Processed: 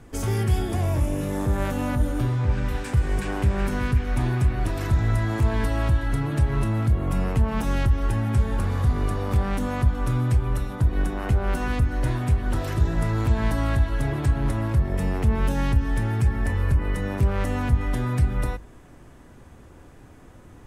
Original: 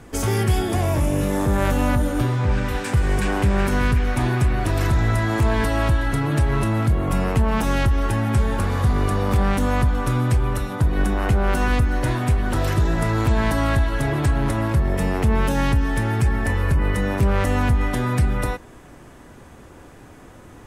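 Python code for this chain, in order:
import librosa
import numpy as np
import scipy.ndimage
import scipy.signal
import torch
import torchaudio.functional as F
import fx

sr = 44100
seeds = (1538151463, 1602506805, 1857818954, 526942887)

y = fx.low_shelf(x, sr, hz=170.0, db=8.0)
y = fx.hum_notches(y, sr, base_hz=50, count=4)
y = y * 10.0 ** (-7.0 / 20.0)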